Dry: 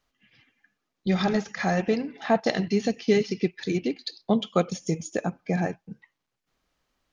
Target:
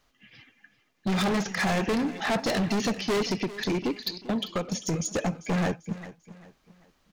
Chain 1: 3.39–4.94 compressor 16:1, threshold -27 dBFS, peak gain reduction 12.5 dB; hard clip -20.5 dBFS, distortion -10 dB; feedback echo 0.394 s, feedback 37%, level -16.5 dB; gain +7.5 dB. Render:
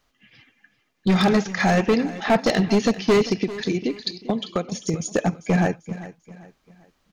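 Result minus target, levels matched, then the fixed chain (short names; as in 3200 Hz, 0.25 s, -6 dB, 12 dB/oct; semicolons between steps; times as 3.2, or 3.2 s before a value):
hard clip: distortion -7 dB
3.39–4.94 compressor 16:1, threshold -27 dBFS, peak gain reduction 12.5 dB; hard clip -31 dBFS, distortion -3 dB; feedback echo 0.394 s, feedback 37%, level -16.5 dB; gain +7.5 dB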